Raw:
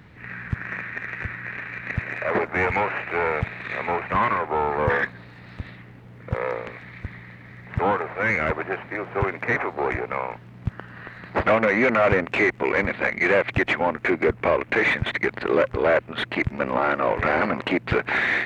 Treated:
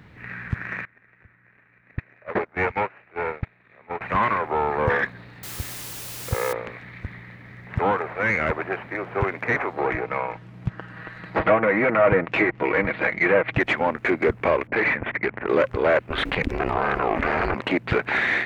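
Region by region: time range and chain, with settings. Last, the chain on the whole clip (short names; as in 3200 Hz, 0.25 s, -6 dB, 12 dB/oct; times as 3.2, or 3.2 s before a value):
0.85–4.01 gate -23 dBFS, range -21 dB + air absorption 80 m + mismatched tape noise reduction decoder only
5.43–6.53 comb 2.4 ms, depth 37% + requantised 6-bit, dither triangular
9.73–13.6 treble ducked by the level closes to 2000 Hz, closed at -16 dBFS + comb 6.3 ms, depth 46%
14.67–15.49 steep low-pass 2600 Hz + low-pass opened by the level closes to 600 Hz, open at -17 dBFS + core saturation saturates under 780 Hz
16.1–17.55 ring modulator 160 Hz + fast leveller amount 70%
whole clip: dry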